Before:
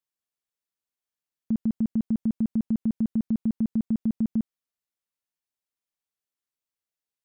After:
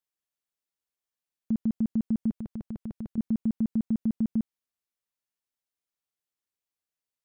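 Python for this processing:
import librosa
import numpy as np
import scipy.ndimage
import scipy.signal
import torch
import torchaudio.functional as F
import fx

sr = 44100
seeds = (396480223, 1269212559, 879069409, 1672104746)

y = fx.peak_eq(x, sr, hz=240.0, db=-11.5, octaves=0.94, at=(2.3, 3.18))
y = F.gain(torch.from_numpy(y), -1.5).numpy()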